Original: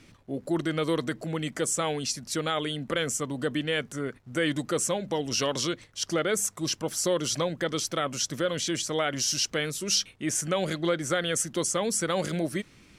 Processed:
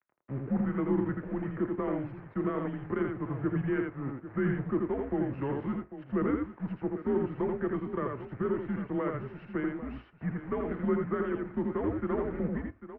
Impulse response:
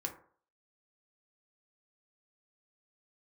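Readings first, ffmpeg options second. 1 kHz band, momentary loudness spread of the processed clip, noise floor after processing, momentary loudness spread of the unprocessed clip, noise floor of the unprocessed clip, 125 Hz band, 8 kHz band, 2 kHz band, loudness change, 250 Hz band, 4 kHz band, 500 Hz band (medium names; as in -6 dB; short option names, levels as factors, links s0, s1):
-5.5 dB, 7 LU, -55 dBFS, 5 LU, -56 dBFS, 0.0 dB, under -40 dB, -9.5 dB, -4.5 dB, +1.0 dB, under -30 dB, -3.5 dB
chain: -filter_complex "[0:a]tiltshelf=f=690:g=5.5,acrusher=bits=6:mix=0:aa=0.000001,afreqshift=-17,aeval=exprs='sgn(val(0))*max(abs(val(0))-0.00891,0)':c=same,aecho=1:1:83|796:0.668|0.224,asplit=2[s0][s1];[1:a]atrim=start_sample=2205,asetrate=61740,aresample=44100[s2];[s1][s2]afir=irnorm=-1:irlink=0,volume=0.562[s3];[s0][s3]amix=inputs=2:normalize=0,highpass=f=230:t=q:w=0.5412,highpass=f=230:t=q:w=1.307,lowpass=f=2100:t=q:w=0.5176,lowpass=f=2100:t=q:w=0.7071,lowpass=f=2100:t=q:w=1.932,afreqshift=-120,volume=0.501"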